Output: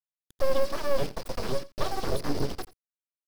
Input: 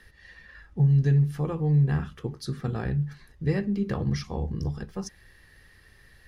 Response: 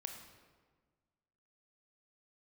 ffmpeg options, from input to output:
-filter_complex "[0:a]bandreject=frequency=60:width_type=h:width=6,bandreject=frequency=120:width_type=h:width=6,bandreject=frequency=180:width_type=h:width=6,bandreject=frequency=240:width_type=h:width=6,bandreject=frequency=300:width_type=h:width=6,bandreject=frequency=360:width_type=h:width=6,bandreject=frequency=420:width_type=h:width=6,afftfilt=real='re*gte(hypot(re,im),0.02)':imag='im*gte(hypot(re,im),0.02)':win_size=1024:overlap=0.75,acrossover=split=650[link_01][link_02];[link_02]alimiter=level_in=10dB:limit=-24dB:level=0:latency=1,volume=-10dB[link_03];[link_01][link_03]amix=inputs=2:normalize=0,acrusher=bits=6:mix=0:aa=0.000001,bandreject=frequency=3600:width=8.8,asplit=2[link_04][link_05];[link_05]aecho=0:1:165:0.112[link_06];[link_04][link_06]amix=inputs=2:normalize=0,asubboost=boost=3.5:cutoff=120,asetrate=84672,aresample=44100,equalizer=frequency=4900:width_type=o:width=0.31:gain=14.5,aeval=exprs='abs(val(0))':channel_layout=same"

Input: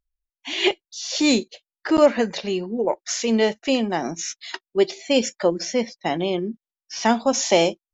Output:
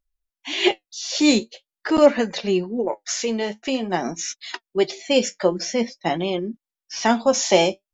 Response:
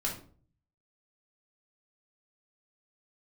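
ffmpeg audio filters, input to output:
-filter_complex "[0:a]asettb=1/sr,asplit=3[link_01][link_02][link_03];[link_01]atrim=end=2.834[link_04];[link_02]atrim=start=2.83:end=3.91,asetpts=PTS-STARTPTS,afade=type=in:duration=0.004:curve=qsin,afade=type=out:start_time=1.076:duration=0.004:curve=qsin,acompressor=threshold=-22dB:ratio=3[link_05];[link_03]atrim=start=3.906[link_06];[link_04][link_05]acrossfade=duration=0.004:curve1=hsin:curve2=qsin[link_07];[link_07][link_06]acrossfade=duration=0.004:curve1=qsin:curve2=hsin,flanger=delay=3.4:depth=7.3:regen=57:speed=0.46:shape=sinusoidal,volume=5dB"

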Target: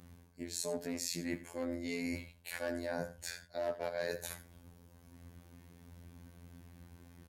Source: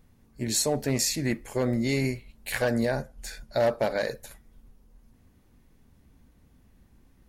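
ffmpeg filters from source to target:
ffmpeg -i in.wav -af "afftfilt=real='hypot(re,im)*cos(PI*b)':imag='0':win_size=2048:overlap=0.75,areverse,acompressor=threshold=-45dB:ratio=5,areverse,highpass=63,aecho=1:1:80|91:0.141|0.126,volume=8.5dB" out.wav

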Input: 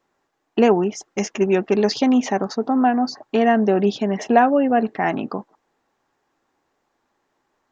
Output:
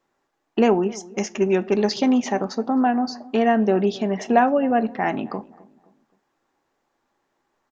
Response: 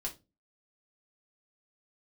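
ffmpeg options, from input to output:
-filter_complex "[0:a]asplit=2[link_01][link_02];[link_02]adelay=261,lowpass=frequency=1200:poles=1,volume=-20.5dB,asplit=2[link_03][link_04];[link_04]adelay=261,lowpass=frequency=1200:poles=1,volume=0.41,asplit=2[link_05][link_06];[link_06]adelay=261,lowpass=frequency=1200:poles=1,volume=0.41[link_07];[link_01][link_03][link_05][link_07]amix=inputs=4:normalize=0,asplit=2[link_08][link_09];[1:a]atrim=start_sample=2205,asetrate=34398,aresample=44100[link_10];[link_09][link_10]afir=irnorm=-1:irlink=0,volume=-12.5dB[link_11];[link_08][link_11]amix=inputs=2:normalize=0,volume=-3.5dB"

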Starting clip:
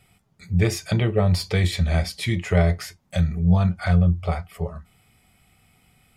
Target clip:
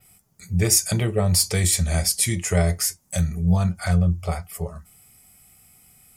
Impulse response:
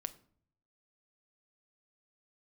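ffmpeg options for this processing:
-af "aexciter=amount=4.8:drive=5.4:freq=5200,adynamicequalizer=threshold=0.0126:dfrequency=8600:dqfactor=1.1:tfrequency=8600:tqfactor=1.1:attack=5:release=100:ratio=0.375:range=3.5:mode=boostabove:tftype=bell,volume=-1.5dB"

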